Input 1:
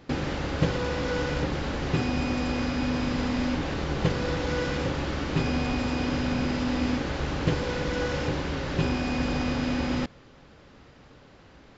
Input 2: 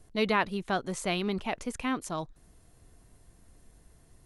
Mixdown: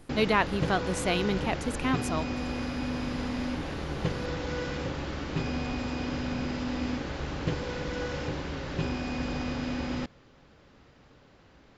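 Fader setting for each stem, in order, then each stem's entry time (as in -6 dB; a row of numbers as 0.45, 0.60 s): -5.0, +2.0 dB; 0.00, 0.00 s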